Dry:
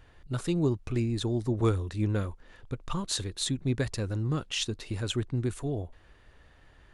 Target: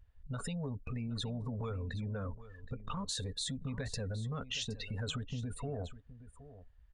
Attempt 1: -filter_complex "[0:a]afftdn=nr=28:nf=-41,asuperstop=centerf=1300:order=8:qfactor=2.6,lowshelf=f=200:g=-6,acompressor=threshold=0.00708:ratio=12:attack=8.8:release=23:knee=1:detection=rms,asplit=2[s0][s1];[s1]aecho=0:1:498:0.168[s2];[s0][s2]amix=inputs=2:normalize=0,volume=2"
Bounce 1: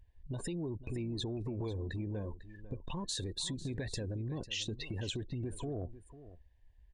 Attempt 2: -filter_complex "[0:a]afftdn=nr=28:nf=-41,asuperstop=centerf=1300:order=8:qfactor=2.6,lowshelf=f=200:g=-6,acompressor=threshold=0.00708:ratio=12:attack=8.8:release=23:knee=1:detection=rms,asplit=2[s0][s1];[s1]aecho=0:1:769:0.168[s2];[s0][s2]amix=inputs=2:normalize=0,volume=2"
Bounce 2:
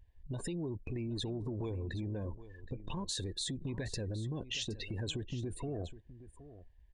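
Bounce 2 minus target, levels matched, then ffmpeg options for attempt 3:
1 kHz band -4.5 dB
-filter_complex "[0:a]afftdn=nr=28:nf=-41,asuperstop=centerf=340:order=8:qfactor=2.6,lowshelf=f=200:g=-6,acompressor=threshold=0.00708:ratio=12:attack=8.8:release=23:knee=1:detection=rms,asplit=2[s0][s1];[s1]aecho=0:1:769:0.168[s2];[s0][s2]amix=inputs=2:normalize=0,volume=2"

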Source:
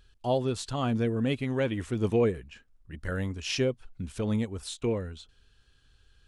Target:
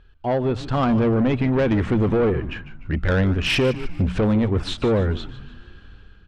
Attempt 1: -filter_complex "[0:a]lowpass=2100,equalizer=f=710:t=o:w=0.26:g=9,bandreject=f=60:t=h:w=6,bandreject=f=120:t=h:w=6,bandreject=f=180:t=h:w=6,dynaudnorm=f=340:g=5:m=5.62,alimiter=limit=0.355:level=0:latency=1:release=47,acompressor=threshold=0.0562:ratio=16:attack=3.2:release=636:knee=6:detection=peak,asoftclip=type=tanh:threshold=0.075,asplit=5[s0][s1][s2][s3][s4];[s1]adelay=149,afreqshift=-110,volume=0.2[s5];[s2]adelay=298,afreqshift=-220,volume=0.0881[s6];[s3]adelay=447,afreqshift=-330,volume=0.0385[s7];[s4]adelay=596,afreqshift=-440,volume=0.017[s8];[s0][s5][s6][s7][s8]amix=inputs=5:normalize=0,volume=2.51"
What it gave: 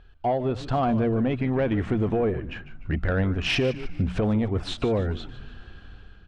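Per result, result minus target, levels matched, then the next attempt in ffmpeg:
compression: peak gain reduction +7.5 dB; 1 kHz band +3.0 dB
-filter_complex "[0:a]lowpass=2100,equalizer=f=710:t=o:w=0.26:g=9,bandreject=f=60:t=h:w=6,bandreject=f=120:t=h:w=6,bandreject=f=180:t=h:w=6,dynaudnorm=f=340:g=5:m=5.62,alimiter=limit=0.355:level=0:latency=1:release=47,acompressor=threshold=0.141:ratio=16:attack=3.2:release=636:knee=6:detection=peak,asoftclip=type=tanh:threshold=0.075,asplit=5[s0][s1][s2][s3][s4];[s1]adelay=149,afreqshift=-110,volume=0.2[s5];[s2]adelay=298,afreqshift=-220,volume=0.0881[s6];[s3]adelay=447,afreqshift=-330,volume=0.0385[s7];[s4]adelay=596,afreqshift=-440,volume=0.017[s8];[s0][s5][s6][s7][s8]amix=inputs=5:normalize=0,volume=2.51"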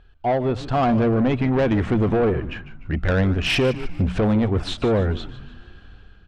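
1 kHz band +3.0 dB
-filter_complex "[0:a]lowpass=2100,bandreject=f=60:t=h:w=6,bandreject=f=120:t=h:w=6,bandreject=f=180:t=h:w=6,dynaudnorm=f=340:g=5:m=5.62,alimiter=limit=0.355:level=0:latency=1:release=47,acompressor=threshold=0.141:ratio=16:attack=3.2:release=636:knee=6:detection=peak,asoftclip=type=tanh:threshold=0.075,asplit=5[s0][s1][s2][s3][s4];[s1]adelay=149,afreqshift=-110,volume=0.2[s5];[s2]adelay=298,afreqshift=-220,volume=0.0881[s6];[s3]adelay=447,afreqshift=-330,volume=0.0385[s7];[s4]adelay=596,afreqshift=-440,volume=0.017[s8];[s0][s5][s6][s7][s8]amix=inputs=5:normalize=0,volume=2.51"

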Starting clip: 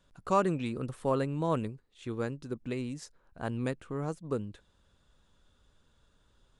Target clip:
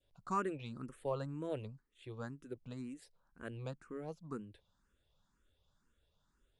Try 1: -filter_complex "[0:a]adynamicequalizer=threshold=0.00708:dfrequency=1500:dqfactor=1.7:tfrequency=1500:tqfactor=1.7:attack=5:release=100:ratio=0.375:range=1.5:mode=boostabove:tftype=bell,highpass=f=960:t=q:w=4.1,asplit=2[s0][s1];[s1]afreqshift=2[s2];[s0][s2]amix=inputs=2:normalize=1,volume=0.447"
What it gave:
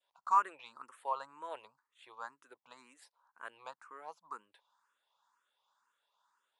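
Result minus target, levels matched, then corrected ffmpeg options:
1 kHz band +3.5 dB
-filter_complex "[0:a]adynamicequalizer=threshold=0.00708:dfrequency=1500:dqfactor=1.7:tfrequency=1500:tqfactor=1.7:attack=5:release=100:ratio=0.375:range=1.5:mode=boostabove:tftype=bell,asplit=2[s0][s1];[s1]afreqshift=2[s2];[s0][s2]amix=inputs=2:normalize=1,volume=0.447"

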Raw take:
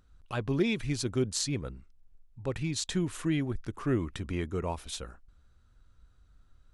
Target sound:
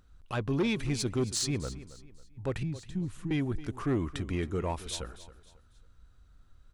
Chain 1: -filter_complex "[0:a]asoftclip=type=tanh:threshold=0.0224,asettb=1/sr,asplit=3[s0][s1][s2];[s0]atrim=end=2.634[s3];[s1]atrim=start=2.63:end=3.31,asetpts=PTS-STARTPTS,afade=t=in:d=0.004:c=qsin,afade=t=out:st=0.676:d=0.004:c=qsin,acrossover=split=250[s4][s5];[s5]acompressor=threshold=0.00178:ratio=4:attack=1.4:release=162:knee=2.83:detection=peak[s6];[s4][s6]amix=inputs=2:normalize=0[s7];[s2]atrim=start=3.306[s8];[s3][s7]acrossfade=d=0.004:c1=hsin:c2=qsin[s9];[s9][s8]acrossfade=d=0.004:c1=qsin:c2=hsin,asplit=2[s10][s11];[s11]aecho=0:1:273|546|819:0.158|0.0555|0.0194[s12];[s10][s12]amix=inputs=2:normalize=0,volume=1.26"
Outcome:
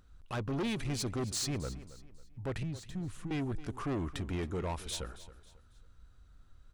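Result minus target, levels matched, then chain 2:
saturation: distortion +8 dB
-filter_complex "[0:a]asoftclip=type=tanh:threshold=0.0631,asettb=1/sr,asplit=3[s0][s1][s2];[s0]atrim=end=2.634[s3];[s1]atrim=start=2.63:end=3.31,asetpts=PTS-STARTPTS,afade=t=in:d=0.004:c=qsin,afade=t=out:st=0.676:d=0.004:c=qsin,acrossover=split=250[s4][s5];[s5]acompressor=threshold=0.00178:ratio=4:attack=1.4:release=162:knee=2.83:detection=peak[s6];[s4][s6]amix=inputs=2:normalize=0[s7];[s2]atrim=start=3.306[s8];[s3][s7]acrossfade=d=0.004:c1=hsin:c2=qsin[s9];[s9][s8]acrossfade=d=0.004:c1=qsin:c2=hsin,asplit=2[s10][s11];[s11]aecho=0:1:273|546|819:0.158|0.0555|0.0194[s12];[s10][s12]amix=inputs=2:normalize=0,volume=1.26"

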